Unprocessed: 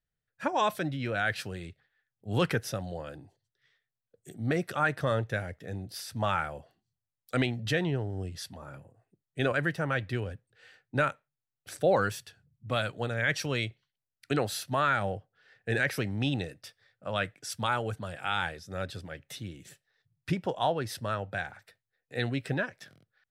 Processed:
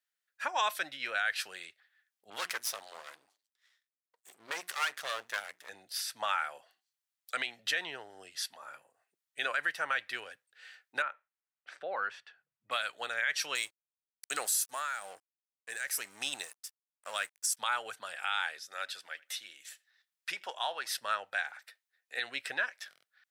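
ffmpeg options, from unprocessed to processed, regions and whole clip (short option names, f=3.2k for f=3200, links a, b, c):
-filter_complex "[0:a]asettb=1/sr,asplit=3[a][b][c];[a]atrim=end=2.304[d];[b]atrim=start=2.3:end=5.69,asetpts=PTS-STARTPTS,afade=t=in:d=0.004:c=qsin,afade=t=out:st=3.386:d=0.004:c=qsin,bandreject=f=60:t=h:w=6,bandreject=f=120:t=h:w=6,bandreject=f=180:t=h:w=6,bandreject=f=240:t=h:w=6,bandreject=f=300:t=h:w=6,aeval=exprs='max(val(0),0)':c=same,adynamicequalizer=threshold=0.002:dfrequency=4100:dqfactor=0.7:tfrequency=4100:tqfactor=0.7:attack=5:release=100:ratio=0.375:range=3:mode=boostabove:tftype=highshelf[e];[c]atrim=start=5.686[f];[d][e]acrossfade=d=0.004:c1=hsin:c2=qsin[g];[g][f]acrossfade=d=0.004:c1=qsin:c2=hsin,asettb=1/sr,asplit=3[h][i][j];[h]atrim=end=11.024[k];[i]atrim=start=11.02:end=12.71,asetpts=PTS-STARTPTS,afade=t=in:d=0.004:c=qsin,afade=t=out:st=1.686:d=0.004:c=qsin,lowpass=1.9k,acompressor=threshold=-35dB:ratio=1.5:attack=3.2:release=140:knee=1:detection=peak[l];[j]atrim=start=12.706[m];[k][l]acrossfade=d=0.004:c1=hsin:c2=qsin[n];[n][m]acrossfade=d=0.004:c1=qsin:c2=hsin,asettb=1/sr,asplit=3[o][p][q];[o]atrim=end=13.554[r];[p]atrim=start=13.55:end=17.57,asetpts=PTS-STARTPTS,afade=t=in:d=0.004:c=qsin,afade=t=out:st=4.016:d=0.004:c=qsin,highshelf=f=5.1k:t=q:w=1.5:g=13.5,aeval=exprs='sgn(val(0))*max(abs(val(0))-0.00473,0)':c=same,tremolo=f=1.1:d=0.72[s];[q]atrim=start=17.566[t];[r][s]acrossfade=d=0.004:c1=hsin:c2=qsin[u];[u][t]acrossfade=d=0.004:c1=qsin:c2=hsin,asettb=1/sr,asplit=3[v][w][x];[v]atrim=end=18.634[y];[w]atrim=start=18.63:end=20.89,asetpts=PTS-STARTPTS,afade=t=in:d=0.004:c=qsin,afade=t=out:st=2.256:d=0.004:c=qsin,lowshelf=f=360:g=-11.5,asplit=2[z][aa];[aa]adelay=83,lowpass=f=4.5k:p=1,volume=-23.5dB,asplit=2[ab][ac];[ac]adelay=83,lowpass=f=4.5k:p=1,volume=0.18[ad];[z][ab][ad]amix=inputs=3:normalize=0,atrim=end_sample=99666[ae];[x]atrim=start=20.886[af];[y][ae]acrossfade=d=0.004:c1=hsin:c2=qsin[ag];[ag][af]acrossfade=d=0.004:c1=qsin:c2=hsin,highpass=1.2k,alimiter=limit=-24dB:level=0:latency=1:release=149,volume=4.5dB"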